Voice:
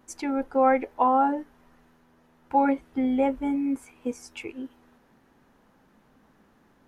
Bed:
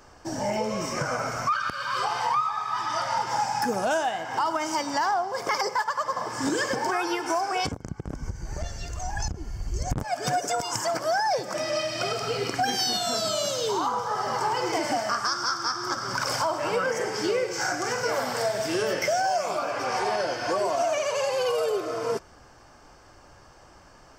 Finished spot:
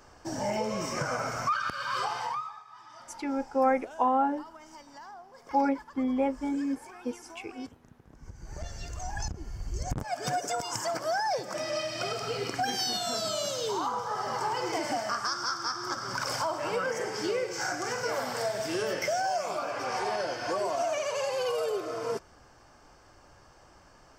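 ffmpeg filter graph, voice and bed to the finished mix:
ffmpeg -i stem1.wav -i stem2.wav -filter_complex "[0:a]adelay=3000,volume=-4dB[link_01];[1:a]volume=14.5dB,afade=type=out:start_time=1.96:duration=0.68:silence=0.112202,afade=type=in:start_time=8.1:duration=0.67:silence=0.133352[link_02];[link_01][link_02]amix=inputs=2:normalize=0" out.wav

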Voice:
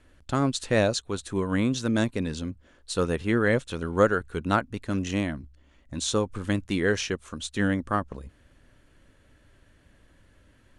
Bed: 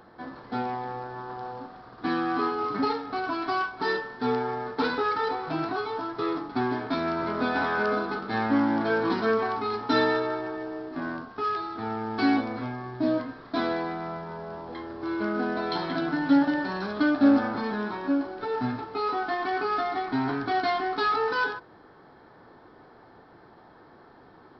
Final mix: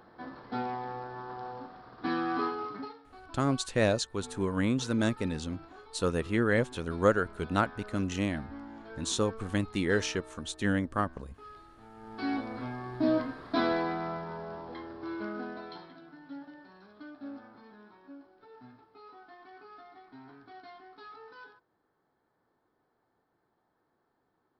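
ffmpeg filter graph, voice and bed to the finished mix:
ffmpeg -i stem1.wav -i stem2.wav -filter_complex "[0:a]adelay=3050,volume=-3.5dB[link_01];[1:a]volume=17dB,afade=type=out:start_time=2.41:duration=0.52:silence=0.133352,afade=type=in:start_time=11.93:duration=1.29:silence=0.0891251,afade=type=out:start_time=13.91:duration=2.05:silence=0.0668344[link_02];[link_01][link_02]amix=inputs=2:normalize=0" out.wav

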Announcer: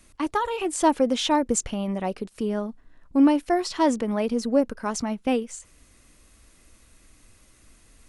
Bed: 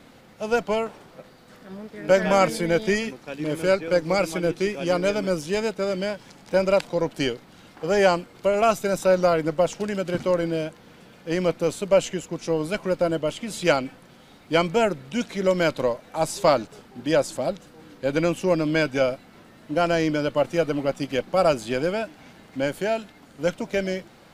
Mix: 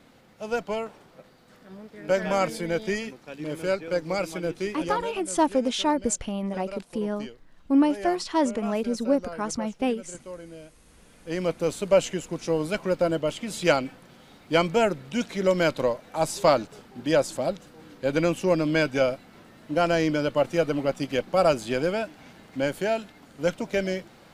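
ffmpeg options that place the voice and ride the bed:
ffmpeg -i stem1.wav -i stem2.wav -filter_complex "[0:a]adelay=4550,volume=-2dB[link_01];[1:a]volume=11dB,afade=type=out:start_time=4.82:duration=0.29:silence=0.251189,afade=type=in:start_time=10.69:duration=1.15:silence=0.149624[link_02];[link_01][link_02]amix=inputs=2:normalize=0" out.wav

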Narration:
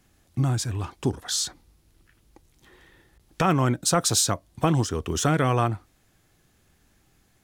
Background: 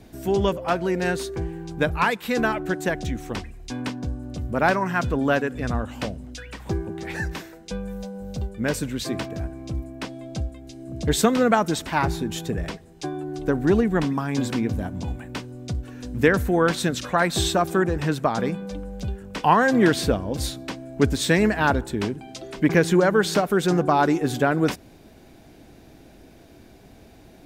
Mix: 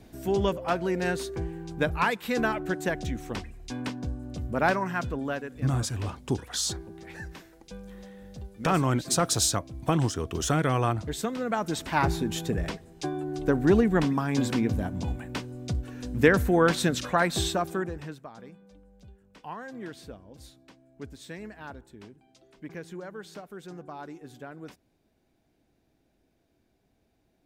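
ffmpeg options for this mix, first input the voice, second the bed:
ffmpeg -i stem1.wav -i stem2.wav -filter_complex "[0:a]adelay=5250,volume=-3dB[link_01];[1:a]volume=6.5dB,afade=type=out:start_time=4.69:duration=0.7:silence=0.398107,afade=type=in:start_time=11.46:duration=0.6:silence=0.298538,afade=type=out:start_time=16.96:duration=1.27:silence=0.0944061[link_02];[link_01][link_02]amix=inputs=2:normalize=0" out.wav

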